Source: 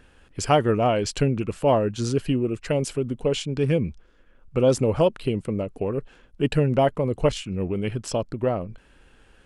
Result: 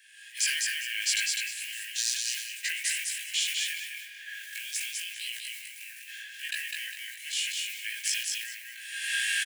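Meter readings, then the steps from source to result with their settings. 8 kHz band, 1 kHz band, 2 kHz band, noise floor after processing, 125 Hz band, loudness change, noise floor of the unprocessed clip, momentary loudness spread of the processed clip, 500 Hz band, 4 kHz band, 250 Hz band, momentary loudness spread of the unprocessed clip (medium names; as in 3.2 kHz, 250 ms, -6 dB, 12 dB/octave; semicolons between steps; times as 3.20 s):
+8.5 dB, under -40 dB, +7.0 dB, -46 dBFS, under -40 dB, -6.5 dB, -56 dBFS, 13 LU, under -40 dB, +6.0 dB, under -40 dB, 9 LU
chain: block-companded coder 7-bit; recorder AGC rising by 46 dB/s; Chebyshev high-pass 1.6 kHz, order 10; treble shelf 5 kHz +7 dB; harmonic-percussive split percussive -11 dB; in parallel at -8 dB: saturation -26 dBFS, distortion -16 dB; on the sum: doubling 18 ms -2 dB; on a send: feedback delay 203 ms, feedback 23%, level -3 dB; on the sum: spring tank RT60 3.1 s, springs 42 ms, chirp 75 ms, DRR 12 dB; decay stretcher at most 54 dB/s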